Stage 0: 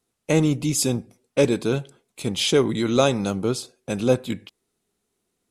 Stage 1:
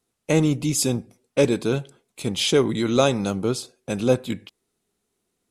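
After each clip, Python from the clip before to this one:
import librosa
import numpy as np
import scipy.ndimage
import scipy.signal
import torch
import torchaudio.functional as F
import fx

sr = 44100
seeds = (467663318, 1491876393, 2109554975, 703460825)

y = x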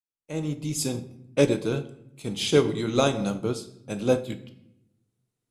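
y = fx.fade_in_head(x, sr, length_s=0.89)
y = fx.room_shoebox(y, sr, seeds[0], volume_m3=240.0, walls='mixed', distance_m=0.51)
y = fx.upward_expand(y, sr, threshold_db=-32.0, expansion=1.5)
y = y * librosa.db_to_amplitude(-1.5)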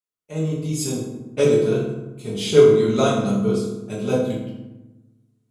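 y = fx.rev_fdn(x, sr, rt60_s=1.0, lf_ratio=1.45, hf_ratio=0.55, size_ms=14.0, drr_db=-6.0)
y = y * librosa.db_to_amplitude(-4.0)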